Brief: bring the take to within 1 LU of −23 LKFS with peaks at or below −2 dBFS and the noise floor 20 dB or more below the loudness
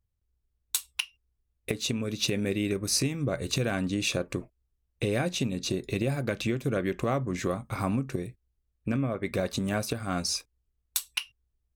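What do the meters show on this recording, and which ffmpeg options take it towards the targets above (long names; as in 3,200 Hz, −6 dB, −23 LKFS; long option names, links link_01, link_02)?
integrated loudness −30.5 LKFS; sample peak −10.5 dBFS; target loudness −23.0 LKFS
→ -af "volume=7.5dB"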